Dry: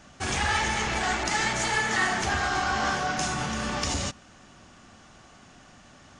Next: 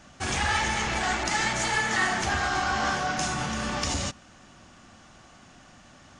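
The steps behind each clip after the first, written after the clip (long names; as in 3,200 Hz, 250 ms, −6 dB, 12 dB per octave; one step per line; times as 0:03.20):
notch filter 420 Hz, Q 13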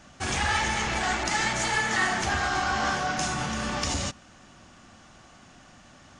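no processing that can be heard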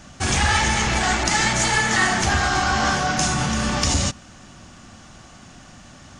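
bass and treble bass +5 dB, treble +4 dB
level +5.5 dB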